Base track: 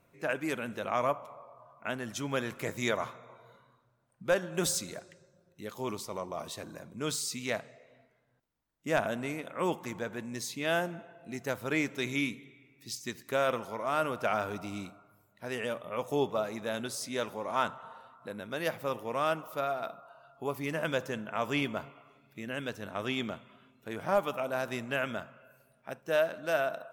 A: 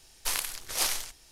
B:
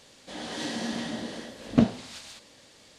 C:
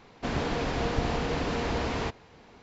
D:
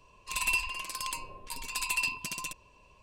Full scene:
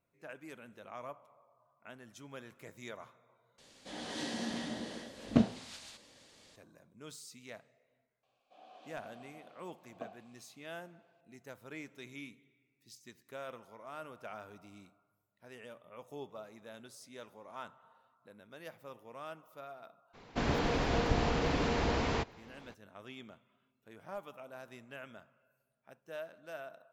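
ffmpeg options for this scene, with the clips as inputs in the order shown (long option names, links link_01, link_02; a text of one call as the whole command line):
ffmpeg -i bed.wav -i cue0.wav -i cue1.wav -i cue2.wav -filter_complex "[2:a]asplit=2[link_01][link_02];[0:a]volume=-16dB[link_03];[link_02]asplit=3[link_04][link_05][link_06];[link_04]bandpass=frequency=730:width_type=q:width=8,volume=0dB[link_07];[link_05]bandpass=frequency=1090:width_type=q:width=8,volume=-6dB[link_08];[link_06]bandpass=frequency=2440:width_type=q:width=8,volume=-9dB[link_09];[link_07][link_08][link_09]amix=inputs=3:normalize=0[link_10];[link_03]asplit=2[link_11][link_12];[link_11]atrim=end=3.584[link_13];[link_01]atrim=end=2.98,asetpts=PTS-STARTPTS,volume=-6dB[link_14];[link_12]atrim=start=6.556[link_15];[link_10]atrim=end=2.98,asetpts=PTS-STARTPTS,volume=-9dB,afade=type=in:duration=0.004:curve=hsin,afade=type=out:start_time=2.976:duration=0.004:curve=hsin,adelay=8230[link_16];[3:a]atrim=end=2.62,asetpts=PTS-STARTPTS,volume=-2dB,afade=type=in:duration=0.02,afade=type=out:start_time=2.6:duration=0.02,adelay=20130[link_17];[link_13][link_14]acrossfade=duration=0.004:curve1=hsin:curve2=hsin[link_18];[link_18][link_15]acrossfade=duration=0.004:curve1=hsin:curve2=hsin[link_19];[link_19][link_16][link_17]amix=inputs=3:normalize=0" out.wav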